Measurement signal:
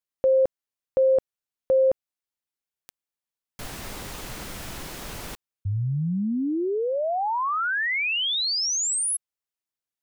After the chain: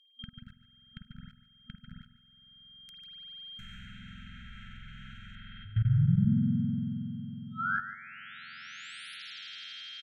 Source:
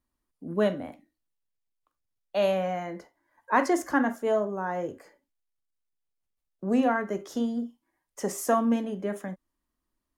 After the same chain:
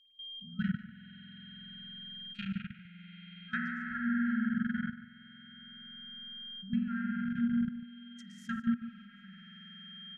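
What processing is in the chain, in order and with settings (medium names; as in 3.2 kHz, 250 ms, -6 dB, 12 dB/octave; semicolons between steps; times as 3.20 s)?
local Wiener filter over 9 samples; whistle 3.2 kHz -47 dBFS; in parallel at -2 dB: compression 5:1, threshold -37 dBFS; on the sum: spring tank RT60 3.6 s, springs 46 ms, chirp 40 ms, DRR -5.5 dB; low-pass that closes with the level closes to 1.2 kHz, closed at -16 dBFS; level held to a coarse grid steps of 21 dB; FFT band-reject 240–1300 Hz; on a send: delay 146 ms -13.5 dB; on the sum: trim -3 dB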